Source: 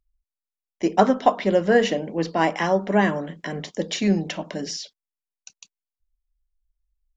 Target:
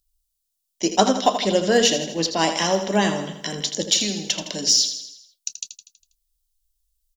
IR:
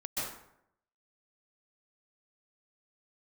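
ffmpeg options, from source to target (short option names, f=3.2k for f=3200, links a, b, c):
-filter_complex "[0:a]asettb=1/sr,asplit=3[a][b][c];[a]atrim=end=3.824[d];[b]atrim=start=3.82:end=4.42,asetpts=PTS-STARTPTS,afade=t=in:d=0.004:c=qsin,afade=t=out:st=0.596:d=0.004:c=qsin,acrossover=split=350|2500[e][f][g];[e]acompressor=threshold=-29dB:ratio=4[h];[f]acompressor=threshold=-33dB:ratio=4[i];[g]acompressor=threshold=-30dB:ratio=4[j];[h][i][j]amix=inputs=3:normalize=0[k];[c]atrim=start=4.416[l];[d][k]acrossfade=d=0.004:c1=hsin:c2=qsin[m];[m][l]acrossfade=d=0.004:c1=qsin:c2=hsin,aexciter=amount=4.6:drive=7.6:freq=3k,aecho=1:1:81|162|243|324|405|486:0.335|0.178|0.0941|0.0499|0.0264|0.014,volume=-1dB"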